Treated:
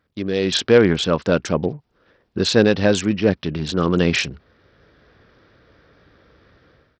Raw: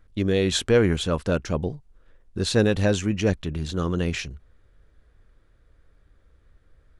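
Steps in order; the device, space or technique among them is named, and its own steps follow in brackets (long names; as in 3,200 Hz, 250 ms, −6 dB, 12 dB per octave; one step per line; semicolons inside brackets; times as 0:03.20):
0:03.14–0:03.67: de-essing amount 95%
Bluetooth headset (high-pass filter 150 Hz 12 dB per octave; automatic gain control gain up to 16 dB; downsampling to 16,000 Hz; level −1 dB; SBC 64 kbit/s 44,100 Hz)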